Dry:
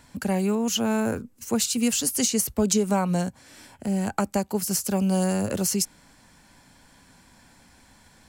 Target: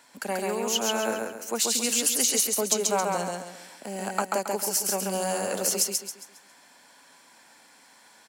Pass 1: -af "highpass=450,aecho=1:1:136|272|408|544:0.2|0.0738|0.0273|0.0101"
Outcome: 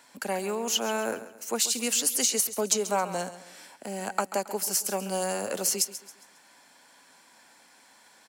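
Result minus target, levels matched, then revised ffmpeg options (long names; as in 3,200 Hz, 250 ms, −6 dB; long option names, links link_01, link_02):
echo-to-direct −11.5 dB
-af "highpass=450,aecho=1:1:136|272|408|544|680:0.75|0.277|0.103|0.038|0.0141"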